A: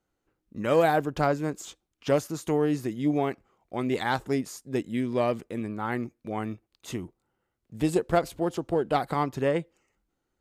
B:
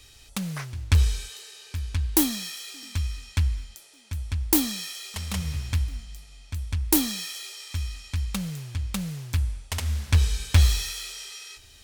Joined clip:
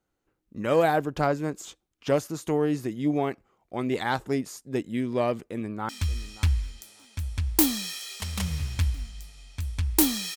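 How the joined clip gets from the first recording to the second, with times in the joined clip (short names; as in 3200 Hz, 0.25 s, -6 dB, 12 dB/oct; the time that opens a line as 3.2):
A
5.43–5.89 echo throw 0.58 s, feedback 15%, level -16.5 dB
5.89 switch to B from 2.83 s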